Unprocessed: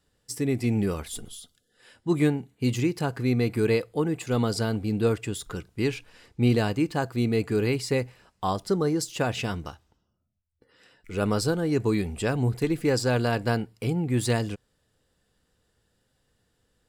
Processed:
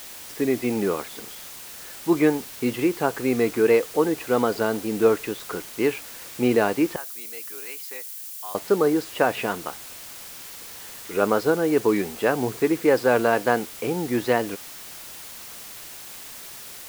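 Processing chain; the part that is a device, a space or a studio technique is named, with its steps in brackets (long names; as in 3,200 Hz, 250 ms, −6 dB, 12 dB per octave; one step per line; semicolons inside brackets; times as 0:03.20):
wax cylinder (band-pass filter 350–2,000 Hz; tape wow and flutter; white noise bed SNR 16 dB)
0:06.96–0:08.55: first difference
level +8 dB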